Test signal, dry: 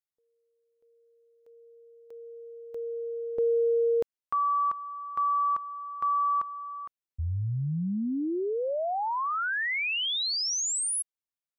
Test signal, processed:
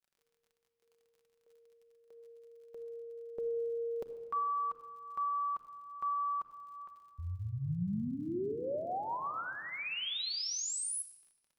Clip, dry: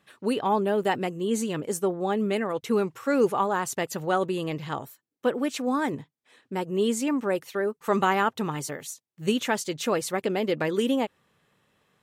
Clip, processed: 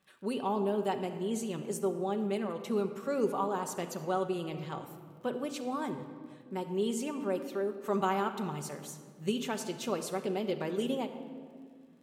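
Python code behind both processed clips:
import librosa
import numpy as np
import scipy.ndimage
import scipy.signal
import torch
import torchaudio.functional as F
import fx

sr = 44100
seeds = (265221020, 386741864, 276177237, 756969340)

y = fx.dynamic_eq(x, sr, hz=1800.0, q=2.7, threshold_db=-47.0, ratio=4.0, max_db=-8)
y = fx.dmg_crackle(y, sr, seeds[0], per_s=45.0, level_db=-49.0)
y = fx.room_shoebox(y, sr, seeds[1], volume_m3=3300.0, walls='mixed', distance_m=1.1)
y = F.gain(torch.from_numpy(y), -8.5).numpy()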